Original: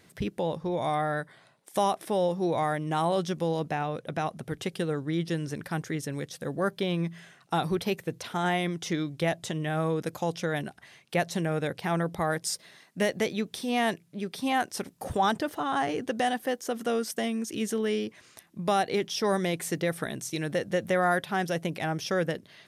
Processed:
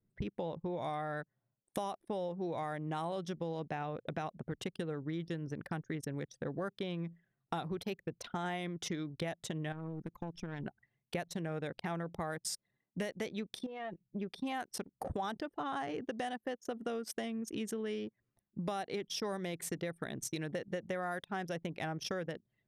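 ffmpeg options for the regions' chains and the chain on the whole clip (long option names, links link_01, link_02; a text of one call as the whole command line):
ffmpeg -i in.wav -filter_complex "[0:a]asettb=1/sr,asplit=3[link_01][link_02][link_03];[link_01]atrim=end=9.724[link_04];[link_02]atrim=start=9.72:end=10.66,asetpts=PTS-STARTPTS,afade=type=in:duration=0.004:curve=qsin,afade=type=out:start_time=0.936:duration=0.004:curve=qsin,equalizer=frequency=550:width=1.8:gain=-8.5,acompressor=threshold=-33dB:ratio=6:attack=3.2:release=140:knee=1:detection=peak,aeval=exprs='clip(val(0),-1,0.01)':channel_layout=same[link_05];[link_03]atrim=start=10.656[link_06];[link_04][link_05]acrossfade=duration=0.004:curve1=hsin:curve2=qsin[link_07];[link_07][link_06]acrossfade=duration=0.004:curve1=qsin:curve2=hsin,asettb=1/sr,asplit=3[link_08][link_09][link_10];[link_08]atrim=end=13.664[link_11];[link_09]atrim=start=13.66:end=14.08,asetpts=PTS-STARTPTS,afade=type=in:duration=0.004:curve=qsin,afade=type=out:start_time=0.416:duration=0.004:curve=qsin,aecho=1:1:6:0.66,atrim=end_sample=18522,acompressor=threshold=-35dB:ratio=20:attack=3.2:release=140:knee=1:detection=peak[link_12];[link_10]atrim=start=14.076[link_13];[link_11][link_12]acrossfade=duration=0.004:curve1=hsin:curve2=qsin[link_14];[link_14][link_13]acrossfade=duration=0.004:curve1=qsin:curve2=hsin,anlmdn=2.51,acompressor=threshold=-38dB:ratio=5,volume=1.5dB" out.wav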